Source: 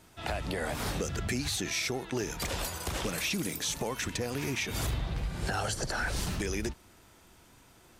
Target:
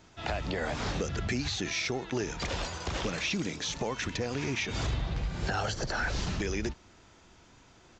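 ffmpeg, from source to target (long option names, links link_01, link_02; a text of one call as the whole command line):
ffmpeg -i in.wav -filter_complex "[0:a]aresample=16000,aresample=44100,acrossover=split=6100[link_01][link_02];[link_02]acompressor=threshold=-52dB:ratio=4:attack=1:release=60[link_03];[link_01][link_03]amix=inputs=2:normalize=0,volume=1dB" out.wav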